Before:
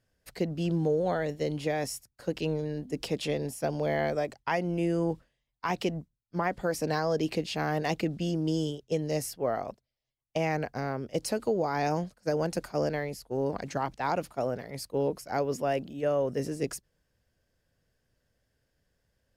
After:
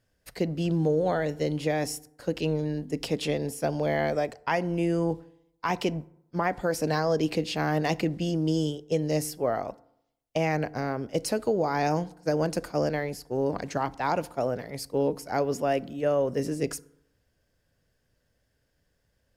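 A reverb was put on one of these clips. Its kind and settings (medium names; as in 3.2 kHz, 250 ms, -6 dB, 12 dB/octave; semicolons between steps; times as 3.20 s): FDN reverb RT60 0.77 s, low-frequency decay 1×, high-frequency decay 0.5×, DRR 18 dB; trim +2.5 dB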